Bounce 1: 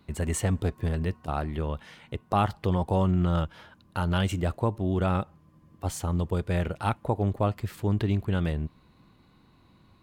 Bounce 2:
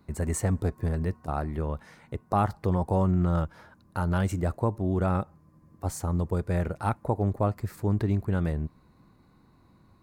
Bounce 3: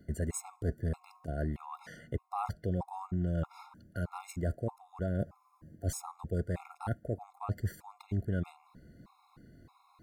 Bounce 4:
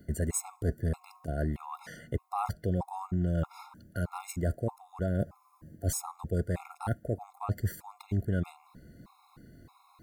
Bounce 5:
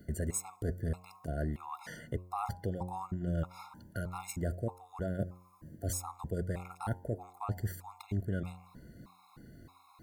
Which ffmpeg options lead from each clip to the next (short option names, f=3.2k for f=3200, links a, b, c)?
-af "equalizer=f=3.1k:t=o:w=0.68:g=-14"
-af "areverse,acompressor=threshold=-32dB:ratio=16,areverse,afftfilt=real='re*gt(sin(2*PI*1.6*pts/sr)*(1-2*mod(floor(b*sr/1024/700),2)),0)':imag='im*gt(sin(2*PI*1.6*pts/sr)*(1-2*mod(floor(b*sr/1024/700),2)),0)':win_size=1024:overlap=0.75,volume=4dB"
-af "highshelf=f=8.5k:g=8.5,volume=3dB"
-filter_complex "[0:a]asplit=2[a][b];[b]acompressor=threshold=-38dB:ratio=6,volume=0.5dB[c];[a][c]amix=inputs=2:normalize=0,bandreject=f=90.18:t=h:w=4,bandreject=f=180.36:t=h:w=4,bandreject=f=270.54:t=h:w=4,bandreject=f=360.72:t=h:w=4,bandreject=f=450.9:t=h:w=4,bandreject=f=541.08:t=h:w=4,bandreject=f=631.26:t=h:w=4,bandreject=f=721.44:t=h:w=4,bandreject=f=811.62:t=h:w=4,bandreject=f=901.8:t=h:w=4,bandreject=f=991.98:t=h:w=4,volume=-6dB"